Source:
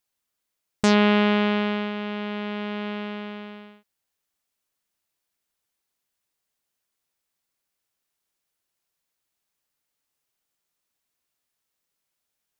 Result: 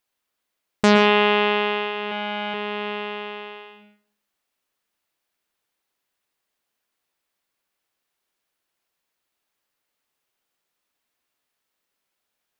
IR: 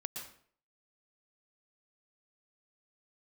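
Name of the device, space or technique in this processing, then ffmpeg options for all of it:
filtered reverb send: -filter_complex "[0:a]asplit=2[a][b];[b]highpass=200,lowpass=4.5k[c];[1:a]atrim=start_sample=2205[d];[c][d]afir=irnorm=-1:irlink=0,volume=0.5dB[e];[a][e]amix=inputs=2:normalize=0,asettb=1/sr,asplit=3[f][g][h];[f]atrim=end=2.114[i];[g]atrim=start=2.11:end=2.54,asetpts=PTS-STARTPTS,afade=t=in:d=0.004:c=qsin,afade=t=out:st=0.426:d=0.004:c=qsin,aecho=1:1:3.5:0.74,atrim=end_sample=18963[j];[h]atrim=start=2.536[k];[i][j]acrossfade=d=0.004:c1=hsin:c2=qsin[l];[l][k]acrossfade=d=0.004:c1=qsin:c2=hsin"

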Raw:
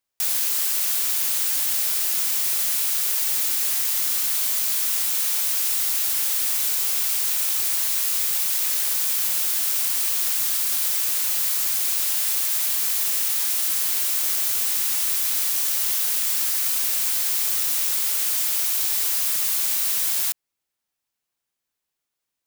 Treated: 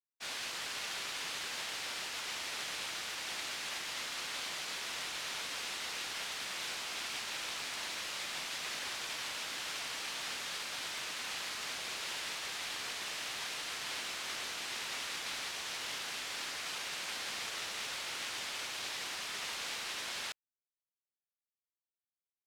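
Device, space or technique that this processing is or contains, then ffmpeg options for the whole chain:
hearing-loss simulation: -af "lowpass=3.4k,agate=range=-33dB:threshold=-33dB:ratio=3:detection=peak"

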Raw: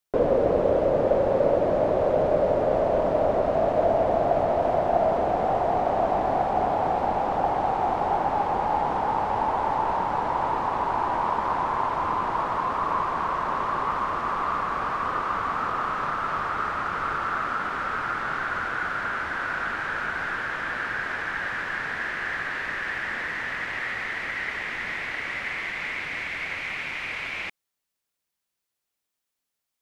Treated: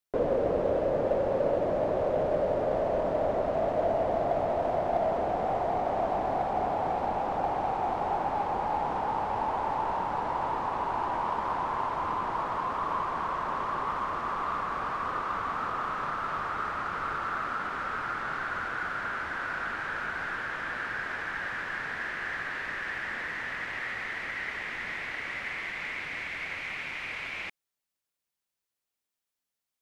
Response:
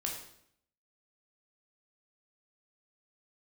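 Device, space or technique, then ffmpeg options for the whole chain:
parallel distortion: -filter_complex "[0:a]asplit=2[a][b];[b]asoftclip=type=hard:threshold=-23.5dB,volume=-10dB[c];[a][c]amix=inputs=2:normalize=0,volume=-7dB"

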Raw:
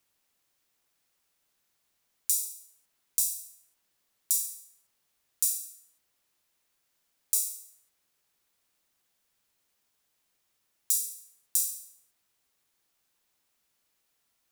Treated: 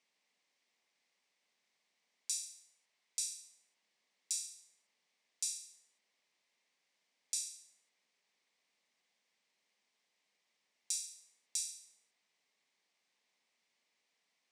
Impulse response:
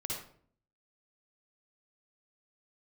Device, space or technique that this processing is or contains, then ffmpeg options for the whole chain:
television speaker: -filter_complex "[0:a]highpass=f=190:w=0.5412,highpass=f=190:w=1.3066,equalizer=f=320:t=q:w=4:g=-6,equalizer=f=1.4k:t=q:w=4:g=-8,equalizer=f=2.1k:t=q:w=4:g=7,equalizer=f=6.9k:t=q:w=4:g=-4,lowpass=f=7.3k:w=0.5412,lowpass=f=7.3k:w=1.3066,asettb=1/sr,asplit=3[a][b][c];[a]atrim=end=2.464[d];[b]atrim=start=2.46:end=3.37,asetpts=PTS-STARTPTS,afade=t=in:d=0.004:c=qsin,afade=t=out:st=0.906:d=0.004:c=qsin,equalizer=f=270:w=1.3:g=-5.5[e];[c]atrim=start=3.366[f];[d][e]acrossfade=d=0.004:c1=hsin:c2=qsin[g];[g][f]acrossfade=d=0.004:c1=qsin:c2=hsin,volume=-1.5dB"

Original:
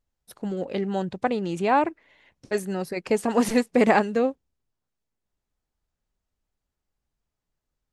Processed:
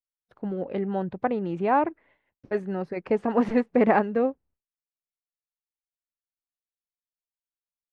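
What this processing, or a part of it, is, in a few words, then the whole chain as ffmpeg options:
hearing-loss simulation: -af "lowpass=1.8k,agate=range=-33dB:threshold=-52dB:ratio=3:detection=peak,volume=-1dB"

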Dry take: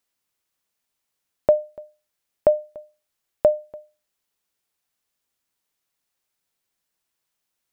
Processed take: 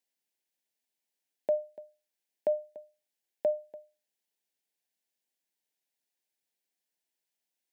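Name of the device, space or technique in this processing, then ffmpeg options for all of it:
PA system with an anti-feedback notch: -af "highpass=f=180:w=0.5412,highpass=f=180:w=1.3066,asuperstop=centerf=1200:order=4:qfactor=2,alimiter=limit=-11.5dB:level=0:latency=1:release=51,volume=-7.5dB"

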